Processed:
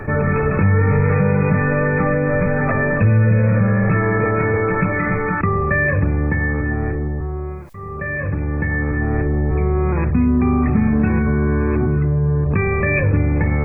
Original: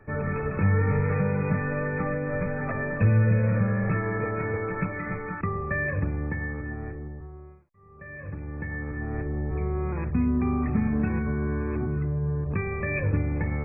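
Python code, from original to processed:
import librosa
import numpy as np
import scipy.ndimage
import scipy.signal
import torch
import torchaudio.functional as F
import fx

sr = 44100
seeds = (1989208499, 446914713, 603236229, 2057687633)

y = fx.env_flatten(x, sr, amount_pct=50)
y = y * librosa.db_to_amplitude(5.5)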